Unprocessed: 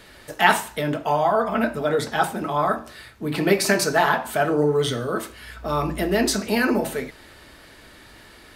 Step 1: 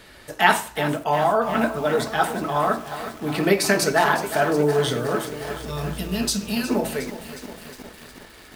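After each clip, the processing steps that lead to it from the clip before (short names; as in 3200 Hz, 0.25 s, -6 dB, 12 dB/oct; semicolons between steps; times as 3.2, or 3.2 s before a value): spectral gain 5.62–6.7, 240–2400 Hz -13 dB; lo-fi delay 0.362 s, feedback 80%, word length 6-bit, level -12 dB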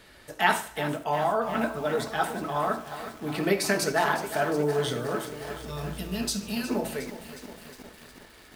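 thinning echo 73 ms, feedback 45%, level -17 dB; gain -6 dB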